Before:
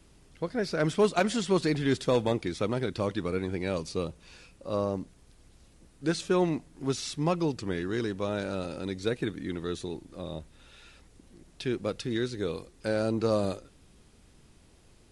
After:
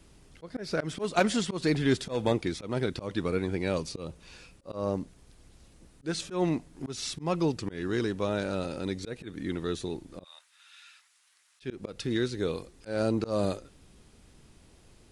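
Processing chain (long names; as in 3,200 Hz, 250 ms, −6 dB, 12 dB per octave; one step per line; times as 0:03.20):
0:10.24–0:11.62: high-pass filter 1,200 Hz 24 dB per octave
volume swells 170 ms
level +1.5 dB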